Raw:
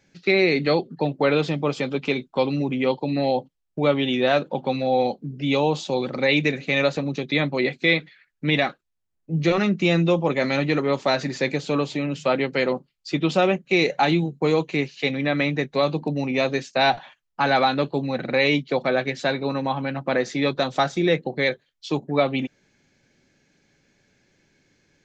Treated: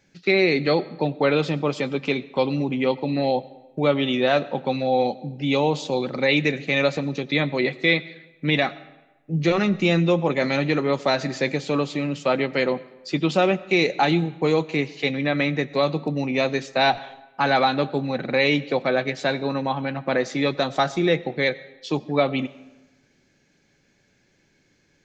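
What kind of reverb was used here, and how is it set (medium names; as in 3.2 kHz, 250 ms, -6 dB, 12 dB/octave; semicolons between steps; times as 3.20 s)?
algorithmic reverb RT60 1.1 s, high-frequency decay 0.75×, pre-delay 55 ms, DRR 19 dB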